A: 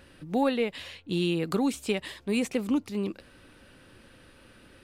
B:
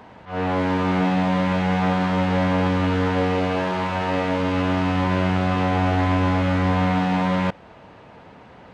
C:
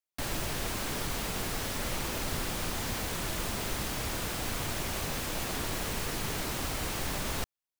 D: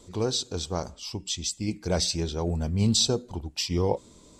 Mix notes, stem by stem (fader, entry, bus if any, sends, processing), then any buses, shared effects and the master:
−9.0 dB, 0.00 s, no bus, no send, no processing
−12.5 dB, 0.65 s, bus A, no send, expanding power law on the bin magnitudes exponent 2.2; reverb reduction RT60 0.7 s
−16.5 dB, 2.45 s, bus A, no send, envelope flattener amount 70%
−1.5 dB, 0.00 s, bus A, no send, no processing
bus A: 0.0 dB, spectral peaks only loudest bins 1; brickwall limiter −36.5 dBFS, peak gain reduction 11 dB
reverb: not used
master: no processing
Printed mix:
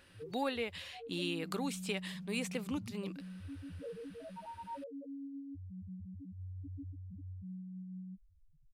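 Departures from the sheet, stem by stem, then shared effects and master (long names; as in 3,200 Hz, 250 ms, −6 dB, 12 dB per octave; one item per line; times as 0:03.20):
stem D −1.5 dB → −11.0 dB
master: extra tilt shelving filter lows −4.5 dB, about 680 Hz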